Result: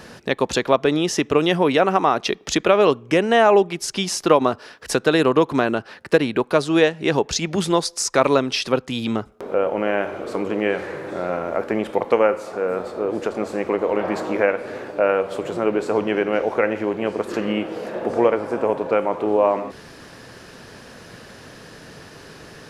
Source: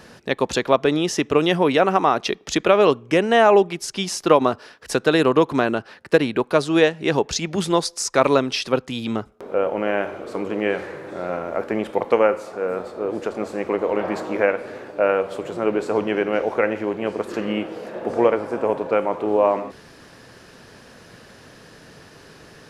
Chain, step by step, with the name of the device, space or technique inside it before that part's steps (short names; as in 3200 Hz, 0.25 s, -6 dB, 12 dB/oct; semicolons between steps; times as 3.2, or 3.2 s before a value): parallel compression (in parallel at -1 dB: compressor, threshold -27 dBFS, peak gain reduction 17 dB); on the sum: gain -1.5 dB